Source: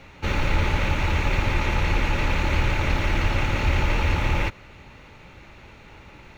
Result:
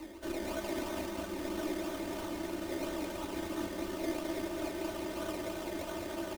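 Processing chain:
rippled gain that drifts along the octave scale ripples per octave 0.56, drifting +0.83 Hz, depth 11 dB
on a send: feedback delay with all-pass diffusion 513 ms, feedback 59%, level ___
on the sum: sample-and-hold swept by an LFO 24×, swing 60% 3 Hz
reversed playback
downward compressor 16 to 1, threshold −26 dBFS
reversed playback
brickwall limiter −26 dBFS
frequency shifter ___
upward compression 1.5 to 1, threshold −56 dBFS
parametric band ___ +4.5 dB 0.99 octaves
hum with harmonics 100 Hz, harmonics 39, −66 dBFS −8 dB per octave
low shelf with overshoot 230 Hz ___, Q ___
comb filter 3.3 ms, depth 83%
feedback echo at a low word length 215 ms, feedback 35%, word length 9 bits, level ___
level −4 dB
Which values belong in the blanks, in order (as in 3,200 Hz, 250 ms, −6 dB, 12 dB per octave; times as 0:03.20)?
−5.5 dB, −220 Hz, 88 Hz, −10.5 dB, 3, −4 dB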